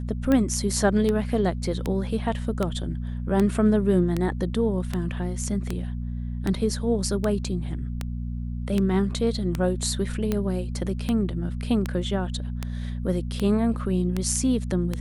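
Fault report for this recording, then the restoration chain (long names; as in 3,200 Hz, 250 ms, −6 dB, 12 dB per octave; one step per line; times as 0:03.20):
mains hum 60 Hz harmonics 4 −30 dBFS
scratch tick 78 rpm −12 dBFS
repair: click removal
hum removal 60 Hz, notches 4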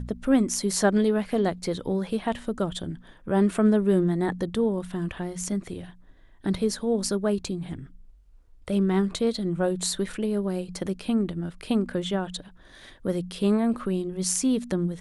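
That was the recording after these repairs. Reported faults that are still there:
none of them is left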